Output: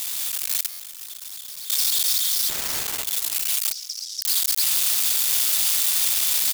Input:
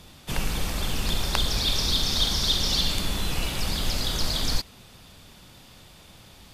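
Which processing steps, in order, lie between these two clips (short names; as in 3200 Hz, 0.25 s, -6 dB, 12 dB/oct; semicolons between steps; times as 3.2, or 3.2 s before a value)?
infinite clipping; differentiator; 2.49–3.04 careless resampling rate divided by 4×, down none, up zero stuff; 3.72–4.22 band-pass 5500 Hz, Q 7.1; echo 0.32 s -23.5 dB; 0.66–1.7 hard clip -36.5 dBFS, distortion -11 dB; AGC gain up to 9.5 dB; limiter -12 dBFS, peak gain reduction 10.5 dB; stuck buffer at 0.69, samples 512, times 8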